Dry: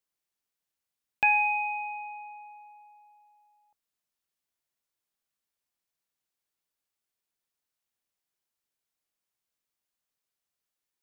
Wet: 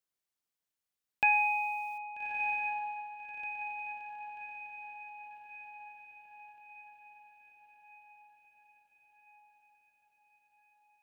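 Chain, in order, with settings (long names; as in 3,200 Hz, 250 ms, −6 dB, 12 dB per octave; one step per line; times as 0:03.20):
feedback delay with all-pass diffusion 1,270 ms, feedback 55%, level −6 dB
0:01.32–0:01.98: bit-depth reduction 10 bits, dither none
level −3 dB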